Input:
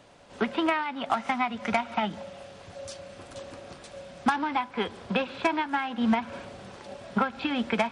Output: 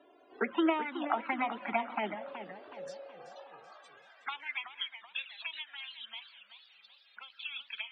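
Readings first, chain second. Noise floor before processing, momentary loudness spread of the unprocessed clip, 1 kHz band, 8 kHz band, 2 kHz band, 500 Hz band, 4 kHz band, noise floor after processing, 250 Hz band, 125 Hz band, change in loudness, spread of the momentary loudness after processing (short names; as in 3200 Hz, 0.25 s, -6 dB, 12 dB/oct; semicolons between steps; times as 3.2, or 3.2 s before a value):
-48 dBFS, 17 LU, -9.0 dB, -18.0 dB, -6.5 dB, -7.5 dB, -3.5 dB, -63 dBFS, -9.0 dB, -19.0 dB, -8.0 dB, 21 LU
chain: dynamic EQ 1400 Hz, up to +6 dB, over -39 dBFS, Q 0.85; envelope flanger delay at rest 3 ms, full sweep at -18.5 dBFS; loudest bins only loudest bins 64; high-pass sweep 350 Hz -> 3500 Hz, 2.59–4.92; warbling echo 0.376 s, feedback 46%, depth 176 cents, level -11 dB; gain -5.5 dB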